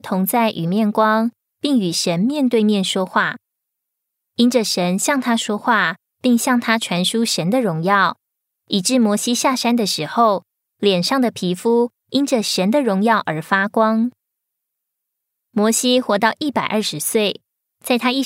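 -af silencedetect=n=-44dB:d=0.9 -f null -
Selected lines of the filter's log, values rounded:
silence_start: 3.36
silence_end: 4.38 | silence_duration: 1.02
silence_start: 14.12
silence_end: 15.54 | silence_duration: 1.42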